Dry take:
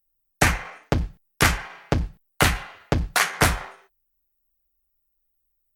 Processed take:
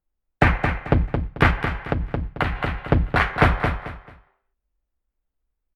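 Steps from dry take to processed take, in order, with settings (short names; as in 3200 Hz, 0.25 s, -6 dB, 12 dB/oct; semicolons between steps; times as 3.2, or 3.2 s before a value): air absorption 470 m; feedback echo 0.22 s, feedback 26%, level -6 dB; 1.5–2.78 compressor 10:1, threshold -23 dBFS, peak gain reduction 9 dB; gain +4.5 dB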